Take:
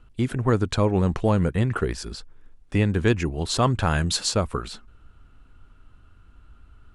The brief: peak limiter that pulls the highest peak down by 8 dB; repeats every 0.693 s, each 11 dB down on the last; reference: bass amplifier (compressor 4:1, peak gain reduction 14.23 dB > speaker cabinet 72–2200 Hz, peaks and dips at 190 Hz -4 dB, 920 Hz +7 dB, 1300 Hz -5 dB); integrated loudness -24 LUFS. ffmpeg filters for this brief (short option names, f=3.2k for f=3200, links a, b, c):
-af "alimiter=limit=-15.5dB:level=0:latency=1,aecho=1:1:693|1386|2079:0.282|0.0789|0.0221,acompressor=threshold=-37dB:ratio=4,highpass=f=72:w=0.5412,highpass=f=72:w=1.3066,equalizer=f=190:t=q:w=4:g=-4,equalizer=f=920:t=q:w=4:g=7,equalizer=f=1.3k:t=q:w=4:g=-5,lowpass=f=2.2k:w=0.5412,lowpass=f=2.2k:w=1.3066,volume=17.5dB"